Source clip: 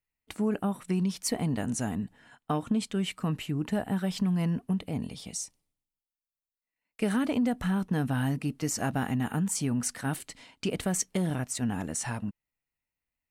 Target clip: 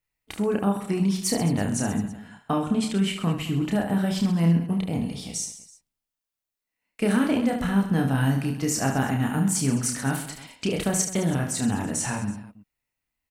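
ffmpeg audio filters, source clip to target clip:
-af "aecho=1:1:30|72|130.8|213.1|328.4:0.631|0.398|0.251|0.158|0.1,volume=3.5dB"

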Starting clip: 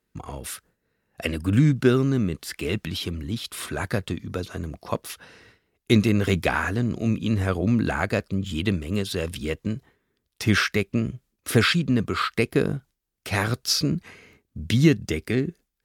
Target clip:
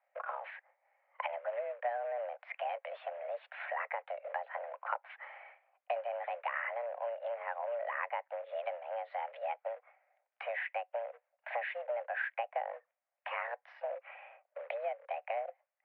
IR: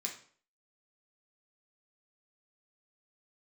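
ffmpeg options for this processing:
-af "acrusher=bits=4:mode=log:mix=0:aa=0.000001,acompressor=threshold=-33dB:ratio=6,highpass=f=210:t=q:w=0.5412,highpass=f=210:t=q:w=1.307,lowpass=f=2k:t=q:w=0.5176,lowpass=f=2k:t=q:w=0.7071,lowpass=f=2k:t=q:w=1.932,afreqshift=350,volume=1dB"

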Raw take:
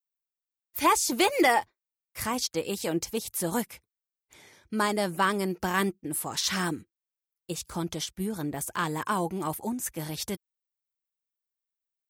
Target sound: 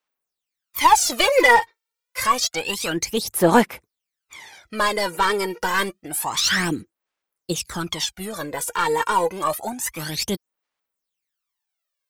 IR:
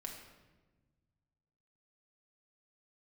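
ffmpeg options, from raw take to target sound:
-filter_complex "[0:a]asplit=2[a][b];[b]highpass=f=720:p=1,volume=16dB,asoftclip=type=tanh:threshold=-11.5dB[c];[a][c]amix=inputs=2:normalize=0,lowpass=f=4.6k:p=1,volume=-6dB,aphaser=in_gain=1:out_gain=1:delay=2.2:decay=0.74:speed=0.28:type=sinusoidal"

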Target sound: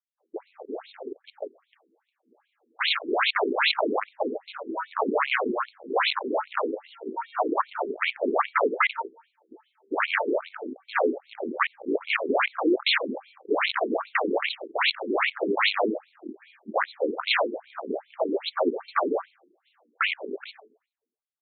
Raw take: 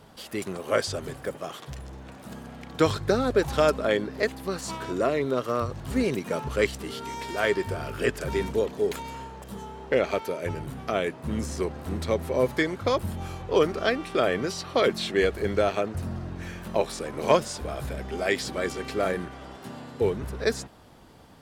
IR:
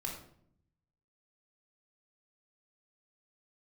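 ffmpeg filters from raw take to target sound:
-filter_complex "[0:a]highshelf=f=6.9k:g=9,agate=range=-33dB:threshold=-31dB:ratio=3:detection=peak,asplit=2[a][b];[1:a]atrim=start_sample=2205,lowshelf=f=190:g=-9,highshelf=f=2.5k:g=-11[c];[b][c]afir=irnorm=-1:irlink=0,volume=-7dB[d];[a][d]amix=inputs=2:normalize=0,aeval=exprs='(mod(10.6*val(0)+1,2)-1)/10.6':c=same,adynamicequalizer=threshold=0.00282:dfrequency=4400:dqfactor=6.7:tfrequency=4400:tqfactor=6.7:attack=5:release=100:ratio=0.375:range=3.5:mode=boostabove:tftype=bell,aeval=exprs='(tanh(15.8*val(0)+0.65)-tanh(0.65))/15.8':c=same,highpass=f=140:w=0.5412,highpass=f=140:w=1.3066,aecho=1:1:87|174|261|348:0.075|0.0397|0.0211|0.0112,dynaudnorm=f=180:g=17:m=6.5dB,afwtdn=0.0398,afftfilt=real='re*between(b*sr/1024,300*pow(3100/300,0.5+0.5*sin(2*PI*2.5*pts/sr))/1.41,300*pow(3100/300,0.5+0.5*sin(2*PI*2.5*pts/sr))*1.41)':imag='im*between(b*sr/1024,300*pow(3100/300,0.5+0.5*sin(2*PI*2.5*pts/sr))/1.41,300*pow(3100/300,0.5+0.5*sin(2*PI*2.5*pts/sr))*1.41)':win_size=1024:overlap=0.75,volume=8dB"

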